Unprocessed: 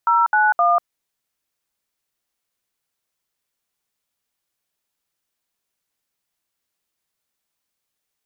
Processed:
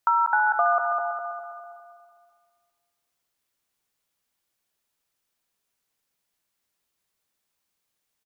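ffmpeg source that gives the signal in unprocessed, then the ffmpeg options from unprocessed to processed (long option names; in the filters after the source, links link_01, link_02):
-f lavfi -i "aevalsrc='0.168*clip(min(mod(t,0.26),0.193-mod(t,0.26))/0.002,0,1)*(eq(floor(t/0.26),0)*(sin(2*PI*941*mod(t,0.26))+sin(2*PI*1336*mod(t,0.26)))+eq(floor(t/0.26),1)*(sin(2*PI*852*mod(t,0.26))+sin(2*PI*1477*mod(t,0.26)))+eq(floor(t/0.26),2)*(sin(2*PI*697*mod(t,0.26))+sin(2*PI*1209*mod(t,0.26))))':duration=0.78:sample_rate=44100"
-filter_complex "[0:a]asplit=2[link_01][link_02];[link_02]adelay=203,lowpass=frequency=1700:poles=1,volume=-8dB,asplit=2[link_03][link_04];[link_04]adelay=203,lowpass=frequency=1700:poles=1,volume=0.53,asplit=2[link_05][link_06];[link_06]adelay=203,lowpass=frequency=1700:poles=1,volume=0.53,asplit=2[link_07][link_08];[link_08]adelay=203,lowpass=frequency=1700:poles=1,volume=0.53,asplit=2[link_09][link_10];[link_10]adelay=203,lowpass=frequency=1700:poles=1,volume=0.53,asplit=2[link_11][link_12];[link_12]adelay=203,lowpass=frequency=1700:poles=1,volume=0.53[link_13];[link_03][link_05][link_07][link_09][link_11][link_13]amix=inputs=6:normalize=0[link_14];[link_01][link_14]amix=inputs=2:normalize=0,acompressor=threshold=-18dB:ratio=6,asplit=2[link_15][link_16];[link_16]aecho=0:1:327|654|981|1308:0.282|0.0958|0.0326|0.0111[link_17];[link_15][link_17]amix=inputs=2:normalize=0"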